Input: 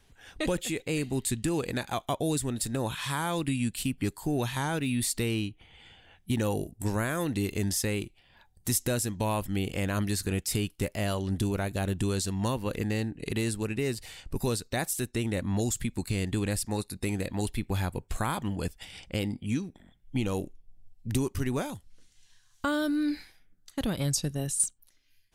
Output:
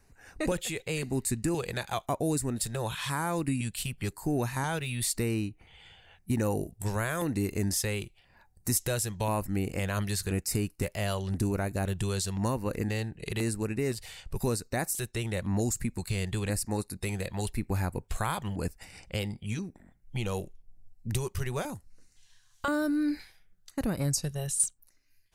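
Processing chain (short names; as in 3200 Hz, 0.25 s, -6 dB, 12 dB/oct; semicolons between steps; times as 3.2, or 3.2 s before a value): LFO notch square 0.97 Hz 270–3300 Hz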